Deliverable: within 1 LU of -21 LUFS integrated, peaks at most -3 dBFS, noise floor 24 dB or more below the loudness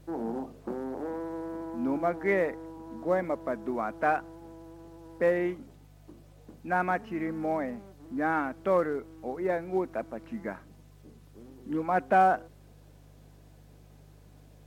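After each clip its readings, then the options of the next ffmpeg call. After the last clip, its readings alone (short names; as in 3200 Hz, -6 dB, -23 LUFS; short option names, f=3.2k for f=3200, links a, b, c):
hum 50 Hz; harmonics up to 150 Hz; hum level -53 dBFS; loudness -30.5 LUFS; peak -12.5 dBFS; loudness target -21.0 LUFS
-> -af "bandreject=f=50:t=h:w=4,bandreject=f=100:t=h:w=4,bandreject=f=150:t=h:w=4"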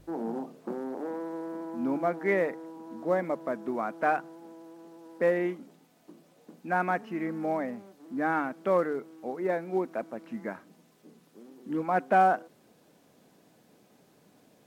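hum none; loudness -30.5 LUFS; peak -13.0 dBFS; loudness target -21.0 LUFS
-> -af "volume=9.5dB"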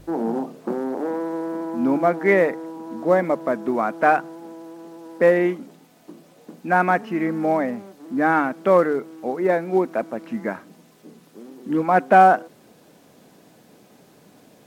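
loudness -21.0 LUFS; peak -3.5 dBFS; noise floor -53 dBFS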